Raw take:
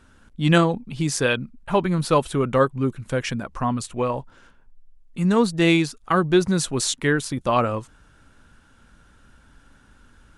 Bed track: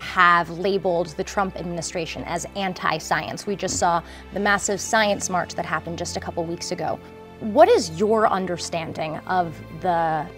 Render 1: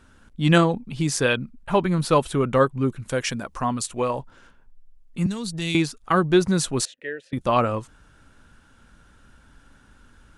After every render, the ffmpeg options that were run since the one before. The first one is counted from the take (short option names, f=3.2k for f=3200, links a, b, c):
-filter_complex "[0:a]asettb=1/sr,asplit=3[a][b][c];[a]atrim=end=3.084[d];[b]atrim=start=3.08:end=4.19,asetpts=PTS-STARTPTS,afade=t=in:d=0.004:c=qsin,afade=t=out:st=1.106:d=0.004:c=qsin,bass=f=250:g=-4,treble=f=4k:g=6[e];[c]atrim=start=4.186[f];[d][e]acrossfade=d=0.004:c1=hsin:c2=qsin[g];[g][f]acrossfade=d=0.004:c1=qsin:c2=hsin,asettb=1/sr,asplit=3[h][i][j];[h]atrim=end=5.264[k];[i]atrim=start=5.26:end=5.75,asetpts=PTS-STARTPTS,afade=t=in:d=0.004:c=qsin,afade=t=out:st=0.486:d=0.004:c=qsin,acrossover=split=150|3000[l][m][n];[m]acompressor=threshold=-32dB:ratio=10:attack=3.2:release=140:knee=2.83:detection=peak[o];[l][o][n]amix=inputs=3:normalize=0[p];[j]atrim=start=5.746[q];[k][p]acrossfade=d=0.004:c1=hsin:c2=qsin[r];[r][q]acrossfade=d=0.004:c1=qsin:c2=hsin,asettb=1/sr,asplit=3[s][t][u];[s]atrim=end=6.854[v];[t]atrim=start=6.85:end=7.33,asetpts=PTS-STARTPTS,afade=t=in:d=0.004:c=qsin,afade=t=out:st=0.476:d=0.004:c=qsin,asplit=3[w][x][y];[w]bandpass=f=530:t=q:w=8,volume=0dB[z];[x]bandpass=f=1.84k:t=q:w=8,volume=-6dB[aa];[y]bandpass=f=2.48k:t=q:w=8,volume=-9dB[ab];[z][aa][ab]amix=inputs=3:normalize=0[ac];[u]atrim=start=7.326[ad];[v][ac]acrossfade=d=0.004:c1=hsin:c2=qsin[ae];[ae][ad]acrossfade=d=0.004:c1=qsin:c2=hsin"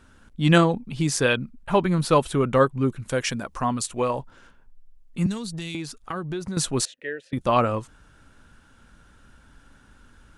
-filter_complex "[0:a]asettb=1/sr,asplit=3[a][b][c];[a]atrim=end=5.374[d];[b]atrim=start=5.37:end=6.57,asetpts=PTS-STARTPTS,afade=t=in:d=0.004:c=qsin,afade=t=out:st=1.196:d=0.004:c=qsin,acompressor=threshold=-29dB:ratio=4:attack=3.2:release=140:knee=1:detection=peak[e];[c]atrim=start=6.566[f];[d][e]acrossfade=d=0.004:c1=hsin:c2=qsin[g];[g][f]acrossfade=d=0.004:c1=qsin:c2=hsin"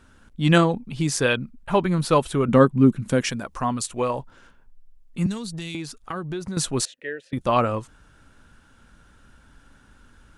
-filter_complex "[0:a]asettb=1/sr,asplit=3[a][b][c];[a]atrim=end=2.484[d];[b]atrim=start=2.48:end=3.3,asetpts=PTS-STARTPTS,afade=t=in:d=0.004:c=qsin,afade=t=out:st=0.816:d=0.004:c=qsin,equalizer=f=210:w=1.2:g=12.5[e];[c]atrim=start=3.296[f];[d][e]acrossfade=d=0.004:c1=hsin:c2=qsin[g];[g][f]acrossfade=d=0.004:c1=qsin:c2=hsin"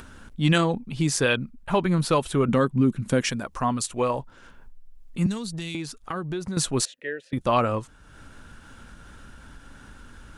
-filter_complex "[0:a]acrossover=split=1800[a][b];[a]alimiter=limit=-12dB:level=0:latency=1:release=131[c];[c][b]amix=inputs=2:normalize=0,acompressor=mode=upward:threshold=-36dB:ratio=2.5"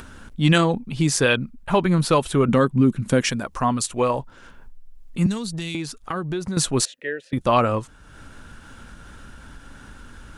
-af "volume=3.5dB"